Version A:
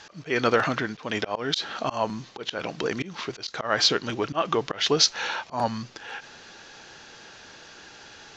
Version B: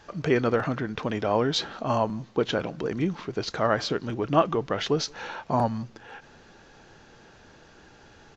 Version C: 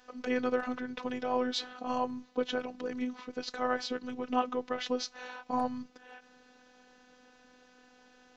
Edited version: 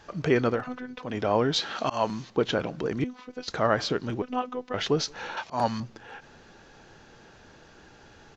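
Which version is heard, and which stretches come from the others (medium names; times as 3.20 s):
B
0.59–1.09 s: from C, crossfade 0.24 s
1.60–2.30 s: from A
3.04–3.48 s: from C
4.22–4.74 s: from C
5.37–5.80 s: from A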